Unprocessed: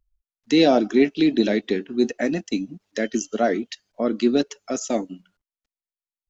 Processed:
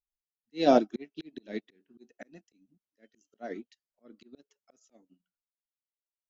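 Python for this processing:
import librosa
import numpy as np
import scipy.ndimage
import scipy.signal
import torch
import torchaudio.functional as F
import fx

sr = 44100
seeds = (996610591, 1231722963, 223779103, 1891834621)

y = fx.vibrato(x, sr, rate_hz=0.36, depth_cents=11.0)
y = fx.auto_swell(y, sr, attack_ms=221.0)
y = fx.upward_expand(y, sr, threshold_db=-34.0, expansion=2.5)
y = y * 10.0 ** (-1.0 / 20.0)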